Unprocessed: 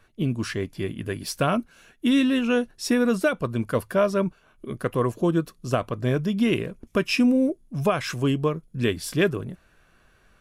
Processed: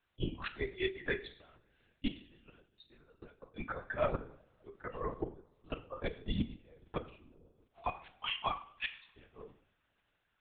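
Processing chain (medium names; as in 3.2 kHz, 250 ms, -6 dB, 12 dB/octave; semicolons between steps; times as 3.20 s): 7.65–9.07 s: elliptic high-pass 660 Hz, stop band 40 dB; spectral noise reduction 20 dB; tilt EQ +2 dB/octave; 3.66–5.16 s: slow attack 191 ms; flange 1.1 Hz, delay 8.8 ms, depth 7.1 ms, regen -65%; crackle 180 per s -62 dBFS; inverted gate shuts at -23 dBFS, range -38 dB; two-slope reverb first 0.56 s, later 2.7 s, from -26 dB, DRR 7.5 dB; LPC vocoder at 8 kHz whisper; trim +2.5 dB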